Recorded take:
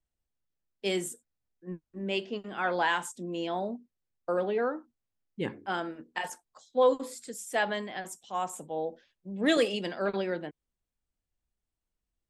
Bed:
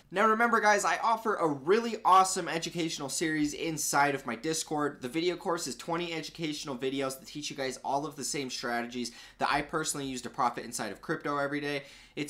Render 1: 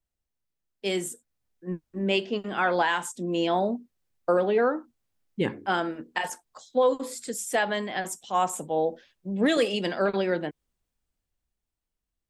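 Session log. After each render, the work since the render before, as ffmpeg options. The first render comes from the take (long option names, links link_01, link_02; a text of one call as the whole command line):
ffmpeg -i in.wav -af "dynaudnorm=framelen=130:gausssize=21:maxgain=8dB,alimiter=limit=-13.5dB:level=0:latency=1:release=403" out.wav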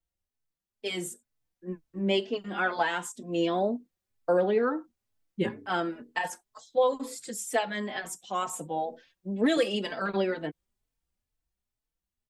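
ffmpeg -i in.wav -filter_complex "[0:a]asplit=2[link_01][link_02];[link_02]adelay=4,afreqshift=2.1[link_03];[link_01][link_03]amix=inputs=2:normalize=1" out.wav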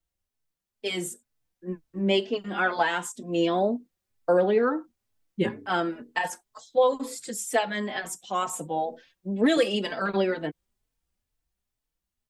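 ffmpeg -i in.wav -af "volume=3dB" out.wav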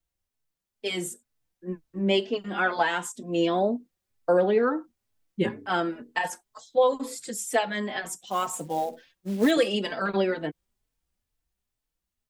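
ffmpeg -i in.wav -filter_complex "[0:a]asettb=1/sr,asplit=3[link_01][link_02][link_03];[link_01]atrim=end=8.274[link_04];[link_02]atrim=start=8.27:end=9.51,asetpts=PTS-STARTPTS,afade=type=in:duration=0.004:curve=qsin,afade=type=out:start_time=1.236:duration=0.004:curve=qsin,acrusher=bits=5:mode=log:mix=0:aa=0.000001[link_05];[link_03]atrim=start=9.506[link_06];[link_04][link_05]acrossfade=duration=0.004:curve1=hsin:curve2=qsin[link_07];[link_07][link_06]acrossfade=duration=0.004:curve1=qsin:curve2=hsin" out.wav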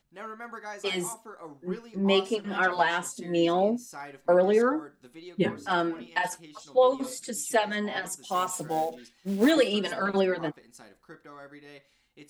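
ffmpeg -i in.wav -i bed.wav -filter_complex "[1:a]volume=-15.5dB[link_01];[0:a][link_01]amix=inputs=2:normalize=0" out.wav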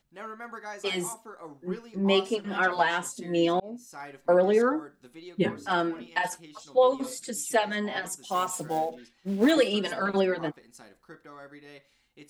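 ffmpeg -i in.wav -filter_complex "[0:a]asettb=1/sr,asplit=3[link_01][link_02][link_03];[link_01]atrim=end=8.784[link_04];[link_02]atrim=start=8.78:end=9.49,asetpts=PTS-STARTPTS,afade=type=in:duration=0.004:curve=qsin,afade=type=out:start_time=0.706:duration=0.004:curve=qsin,highshelf=frequency=5100:gain=-9[link_05];[link_03]atrim=start=9.486[link_06];[link_04][link_05]acrossfade=duration=0.004:curve1=hsin:curve2=qsin[link_07];[link_07][link_06]acrossfade=duration=0.004:curve1=qsin:curve2=hsin,asplit=2[link_08][link_09];[link_08]atrim=end=3.6,asetpts=PTS-STARTPTS,afade=type=out:start_time=3.596:duration=0.004:curve=hsin[link_10];[link_09]atrim=start=3.6,asetpts=PTS-STARTPTS,afade=type=in:duration=0.44[link_11];[link_10][link_11]concat=n=2:v=0:a=1" out.wav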